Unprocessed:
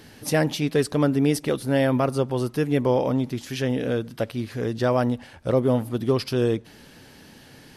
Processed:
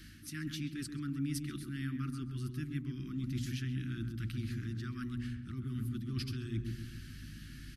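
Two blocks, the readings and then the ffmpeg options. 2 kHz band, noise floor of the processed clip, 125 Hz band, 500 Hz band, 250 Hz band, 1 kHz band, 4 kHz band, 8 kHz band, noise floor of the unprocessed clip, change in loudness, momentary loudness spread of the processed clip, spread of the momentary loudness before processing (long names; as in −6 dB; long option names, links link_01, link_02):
−15.5 dB, −50 dBFS, −10.0 dB, −32.0 dB, −14.5 dB, −26.0 dB, −13.0 dB, −13.0 dB, −49 dBFS, −15.5 dB, 6 LU, 7 LU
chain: -filter_complex "[0:a]bandreject=frequency=60:width_type=h:width=6,bandreject=frequency=120:width_type=h:width=6,bandreject=frequency=180:width_type=h:width=6,bandreject=frequency=240:width_type=h:width=6,aeval=exprs='val(0)+0.00355*(sin(2*PI*50*n/s)+sin(2*PI*2*50*n/s)/2+sin(2*PI*3*50*n/s)/3+sin(2*PI*4*50*n/s)/4+sin(2*PI*5*50*n/s)/5)':channel_layout=same,areverse,acompressor=threshold=-32dB:ratio=4,areverse,asubboost=boost=2.5:cutoff=160,asuperstop=centerf=650:order=12:qfactor=0.71,asplit=2[link_01][link_02];[link_02]adelay=132,lowpass=frequency=860:poles=1,volume=-3dB,asplit=2[link_03][link_04];[link_04]adelay=132,lowpass=frequency=860:poles=1,volume=0.51,asplit=2[link_05][link_06];[link_06]adelay=132,lowpass=frequency=860:poles=1,volume=0.51,asplit=2[link_07][link_08];[link_08]adelay=132,lowpass=frequency=860:poles=1,volume=0.51,asplit=2[link_09][link_10];[link_10]adelay=132,lowpass=frequency=860:poles=1,volume=0.51,asplit=2[link_11][link_12];[link_12]adelay=132,lowpass=frequency=860:poles=1,volume=0.51,asplit=2[link_13][link_14];[link_14]adelay=132,lowpass=frequency=860:poles=1,volume=0.51[link_15];[link_01][link_03][link_05][link_07][link_09][link_11][link_13][link_15]amix=inputs=8:normalize=0,volume=-5dB"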